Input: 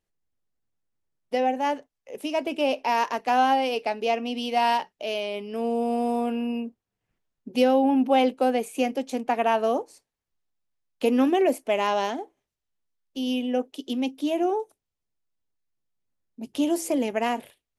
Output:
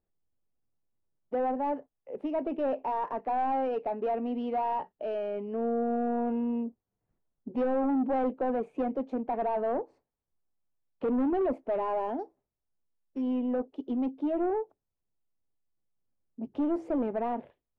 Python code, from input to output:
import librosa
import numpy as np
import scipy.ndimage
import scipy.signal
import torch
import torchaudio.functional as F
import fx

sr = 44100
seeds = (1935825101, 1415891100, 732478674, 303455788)

y = fx.sample_sort(x, sr, block=8, at=(12.19, 13.22))
y = 10.0 ** (-24.0 / 20.0) * np.tanh(y / 10.0 ** (-24.0 / 20.0))
y = scipy.signal.sosfilt(scipy.signal.butter(2, 1000.0, 'lowpass', fs=sr, output='sos'), y)